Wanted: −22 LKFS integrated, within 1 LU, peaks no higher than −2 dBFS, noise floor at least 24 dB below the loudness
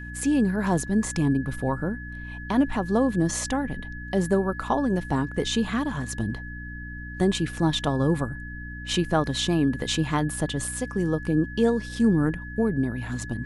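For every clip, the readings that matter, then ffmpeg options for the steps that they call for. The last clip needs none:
mains hum 60 Hz; hum harmonics up to 300 Hz; level of the hum −35 dBFS; interfering tone 1,700 Hz; level of the tone −39 dBFS; integrated loudness −25.5 LKFS; sample peak −9.5 dBFS; target loudness −22.0 LKFS
→ -af "bandreject=frequency=60:width_type=h:width=4,bandreject=frequency=120:width_type=h:width=4,bandreject=frequency=180:width_type=h:width=4,bandreject=frequency=240:width_type=h:width=4,bandreject=frequency=300:width_type=h:width=4"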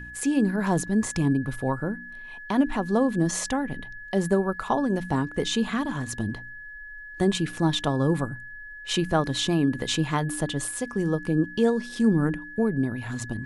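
mains hum none found; interfering tone 1,700 Hz; level of the tone −39 dBFS
→ -af "bandreject=frequency=1700:width=30"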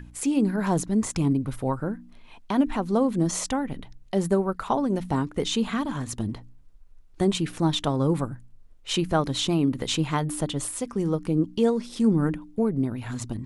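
interfering tone none found; integrated loudness −26.0 LKFS; sample peak −9.5 dBFS; target loudness −22.0 LKFS
→ -af "volume=4dB"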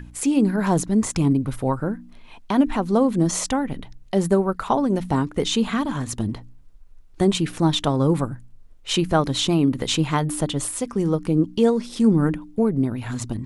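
integrated loudness −22.0 LKFS; sample peak −5.5 dBFS; background noise floor −46 dBFS

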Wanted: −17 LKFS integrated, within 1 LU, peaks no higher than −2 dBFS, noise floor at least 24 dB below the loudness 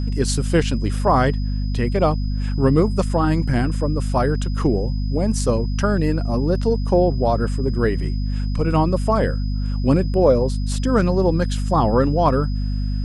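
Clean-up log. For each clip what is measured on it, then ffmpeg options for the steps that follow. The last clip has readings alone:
mains hum 50 Hz; hum harmonics up to 250 Hz; level of the hum −19 dBFS; interfering tone 5,000 Hz; level of the tone −43 dBFS; integrated loudness −20.0 LKFS; sample peak −4.5 dBFS; target loudness −17.0 LKFS
→ -af "bandreject=frequency=50:width_type=h:width=4,bandreject=frequency=100:width_type=h:width=4,bandreject=frequency=150:width_type=h:width=4,bandreject=frequency=200:width_type=h:width=4,bandreject=frequency=250:width_type=h:width=4"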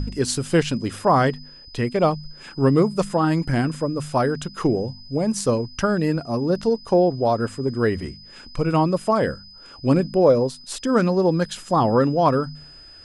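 mains hum none found; interfering tone 5,000 Hz; level of the tone −43 dBFS
→ -af "bandreject=frequency=5000:width=30"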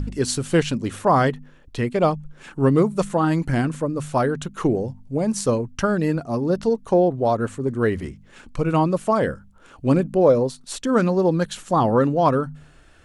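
interfering tone none found; integrated loudness −21.5 LKFS; sample peak −5.0 dBFS; target loudness −17.0 LKFS
→ -af "volume=4.5dB,alimiter=limit=-2dB:level=0:latency=1"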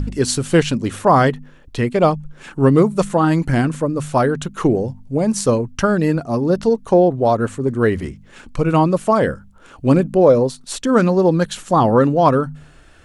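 integrated loudness −17.0 LKFS; sample peak −2.0 dBFS; background noise floor −46 dBFS

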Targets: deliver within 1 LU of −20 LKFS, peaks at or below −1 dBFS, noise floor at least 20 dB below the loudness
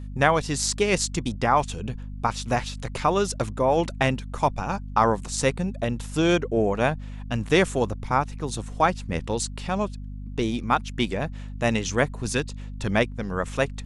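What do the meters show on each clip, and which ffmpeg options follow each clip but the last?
mains hum 50 Hz; hum harmonics up to 250 Hz; level of the hum −33 dBFS; integrated loudness −25.5 LKFS; sample peak −4.5 dBFS; target loudness −20.0 LKFS
→ -af "bandreject=frequency=50:width_type=h:width=4,bandreject=frequency=100:width_type=h:width=4,bandreject=frequency=150:width_type=h:width=4,bandreject=frequency=200:width_type=h:width=4,bandreject=frequency=250:width_type=h:width=4"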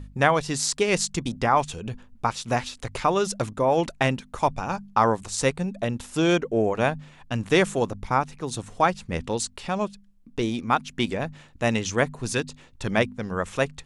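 mains hum none found; integrated loudness −25.5 LKFS; sample peak −4.5 dBFS; target loudness −20.0 LKFS
→ -af "volume=5.5dB,alimiter=limit=-1dB:level=0:latency=1"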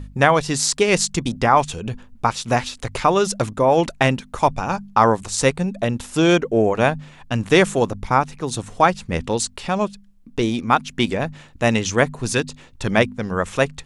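integrated loudness −20.0 LKFS; sample peak −1.0 dBFS; background noise floor −47 dBFS

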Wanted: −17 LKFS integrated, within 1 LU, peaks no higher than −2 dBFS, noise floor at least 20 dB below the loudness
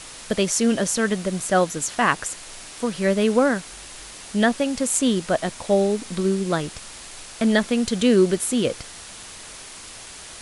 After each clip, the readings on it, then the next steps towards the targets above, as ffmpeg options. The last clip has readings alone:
background noise floor −40 dBFS; target noise floor −42 dBFS; integrated loudness −22.0 LKFS; sample peak −3.5 dBFS; target loudness −17.0 LKFS
→ -af "afftdn=noise_reduction=6:noise_floor=-40"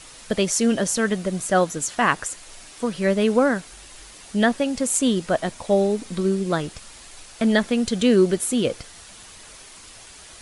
background noise floor −44 dBFS; integrated loudness −22.0 LKFS; sample peak −3.5 dBFS; target loudness −17.0 LKFS
→ -af "volume=5dB,alimiter=limit=-2dB:level=0:latency=1"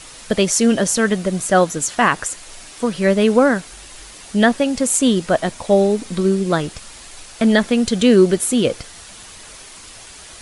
integrated loudness −17.0 LKFS; sample peak −2.0 dBFS; background noise floor −39 dBFS

